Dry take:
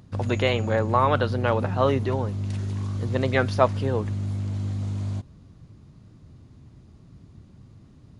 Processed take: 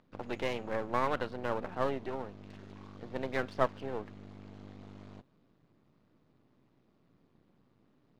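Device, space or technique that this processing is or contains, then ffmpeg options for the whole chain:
crystal radio: -af "highpass=260,lowpass=3.3k,aeval=exprs='if(lt(val(0),0),0.251*val(0),val(0))':c=same,volume=-7dB"

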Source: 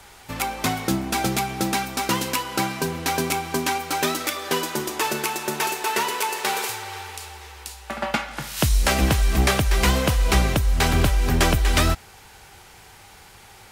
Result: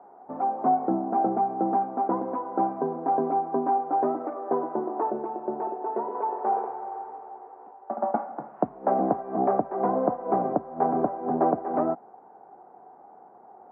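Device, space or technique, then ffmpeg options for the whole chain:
under water: -filter_complex "[0:a]highpass=f=230:w=0.5412,highpass=f=230:w=1.3066,lowpass=f=960:w=0.5412,lowpass=f=960:w=1.3066,lowpass=1.6k,equalizer=f=720:t=o:w=0.22:g=10.5,asettb=1/sr,asplit=3[a][b][c];[a]atrim=end=5.104[d];[b]atrim=start=5.1:end=6.15,asetpts=PTS-STARTPTS,afade=t=in:d=0.004:c=qsin,afade=t=out:st=1.046:d=0.004:c=qsin,equalizer=f=1.3k:t=o:w=1.8:g=-6[e];[c]atrim=start=6.146[f];[d][e]acrossfade=d=0.004:c1=hsin:c2=qsin[g];[g][f]acrossfade=d=0.004:c1=qsin:c2=hsin"

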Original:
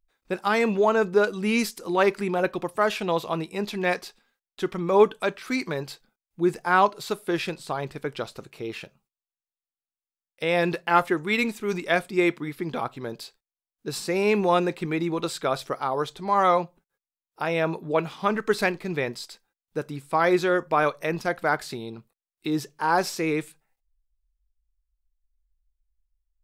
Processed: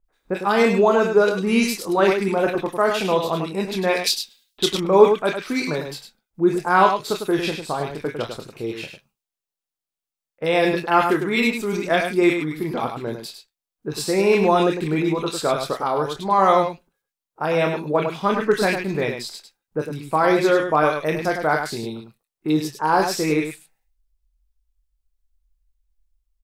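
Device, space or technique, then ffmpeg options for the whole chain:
slapback doubling: -filter_complex "[0:a]asplit=3[a][b][c];[b]adelay=26,volume=-8dB[d];[c]adelay=102,volume=-7dB[e];[a][d][e]amix=inputs=3:normalize=0,asettb=1/sr,asplit=3[f][g][h];[f]atrim=end=4.004[i];[g]atrim=start=4:end=4.76,asetpts=PTS-STARTPTS,afade=t=in:d=0.004:c=qsin,afade=t=out:st=0.756:d=0.004:c=qsin,highshelf=f=2.4k:t=q:w=1.5:g=14[j];[h]atrim=start=4.756[k];[i][j]acrossfade=d=0.004:c1=hsin:c2=qsin[l];[l][k]acrossfade=d=0.004:c1=qsin:c2=hsin,acrossover=split=1700[m][n];[n]adelay=40[o];[m][o]amix=inputs=2:normalize=0,volume=4dB"

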